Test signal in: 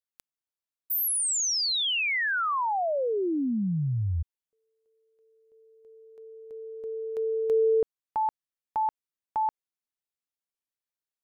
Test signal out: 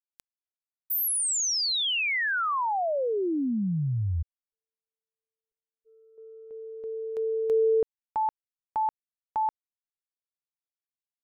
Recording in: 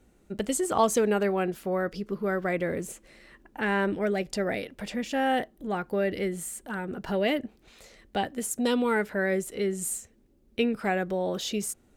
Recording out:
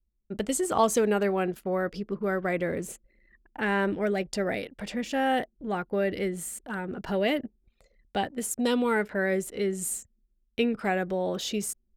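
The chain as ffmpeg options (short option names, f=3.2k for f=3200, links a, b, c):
-af "agate=range=-7dB:threshold=-50dB:ratio=3:release=355:detection=rms,anlmdn=0.0251"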